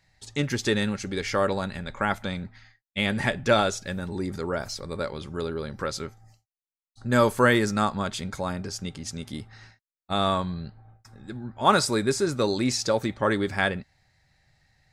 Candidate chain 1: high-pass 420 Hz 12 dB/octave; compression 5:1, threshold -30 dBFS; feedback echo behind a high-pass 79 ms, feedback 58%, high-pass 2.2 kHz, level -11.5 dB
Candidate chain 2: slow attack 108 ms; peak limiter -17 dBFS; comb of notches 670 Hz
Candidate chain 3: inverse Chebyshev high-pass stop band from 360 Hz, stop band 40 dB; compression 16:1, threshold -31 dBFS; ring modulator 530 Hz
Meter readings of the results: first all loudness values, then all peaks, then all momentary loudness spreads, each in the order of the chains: -35.5 LUFS, -31.5 LUFS, -40.0 LUFS; -13.5 dBFS, -16.0 dBFS, -16.5 dBFS; 13 LU, 12 LU, 13 LU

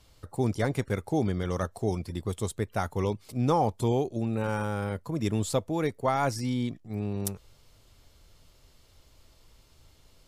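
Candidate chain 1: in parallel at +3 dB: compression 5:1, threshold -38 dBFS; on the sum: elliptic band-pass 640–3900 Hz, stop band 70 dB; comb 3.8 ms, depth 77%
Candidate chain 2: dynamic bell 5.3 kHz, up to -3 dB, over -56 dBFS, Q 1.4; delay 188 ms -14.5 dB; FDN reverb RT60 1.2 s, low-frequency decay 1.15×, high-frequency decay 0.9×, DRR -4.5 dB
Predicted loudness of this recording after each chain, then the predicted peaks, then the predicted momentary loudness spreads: -32.0 LUFS, -22.5 LUFS; -13.0 dBFS, -4.0 dBFS; 18 LU, 8 LU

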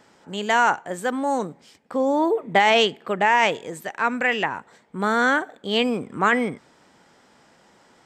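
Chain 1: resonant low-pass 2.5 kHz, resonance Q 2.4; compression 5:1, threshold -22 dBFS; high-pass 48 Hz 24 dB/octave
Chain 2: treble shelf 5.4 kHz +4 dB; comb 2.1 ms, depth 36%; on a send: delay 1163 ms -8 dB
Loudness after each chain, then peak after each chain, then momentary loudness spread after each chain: -27.0 LUFS, -21.0 LUFS; -8.5 dBFS, -4.5 dBFS; 9 LU, 13 LU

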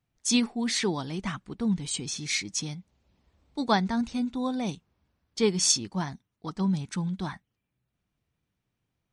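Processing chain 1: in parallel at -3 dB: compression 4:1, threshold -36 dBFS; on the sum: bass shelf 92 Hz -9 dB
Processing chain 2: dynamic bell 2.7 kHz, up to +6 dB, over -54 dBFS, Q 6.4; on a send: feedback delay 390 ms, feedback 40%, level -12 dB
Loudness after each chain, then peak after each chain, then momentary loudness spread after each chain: -27.5 LUFS, -28.0 LUFS; -9.0 dBFS, -10.0 dBFS; 14 LU, 17 LU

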